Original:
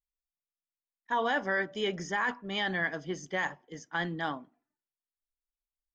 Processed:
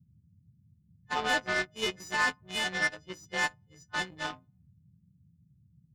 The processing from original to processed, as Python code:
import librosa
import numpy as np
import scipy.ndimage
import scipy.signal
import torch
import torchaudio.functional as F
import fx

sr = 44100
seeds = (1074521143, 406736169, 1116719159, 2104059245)

y = fx.freq_snap(x, sr, grid_st=3)
y = fx.cheby_harmonics(y, sr, harmonics=(7,), levels_db=(-18,), full_scale_db=-14.5)
y = fx.dmg_noise_band(y, sr, seeds[0], low_hz=72.0, high_hz=180.0, level_db=-62.0)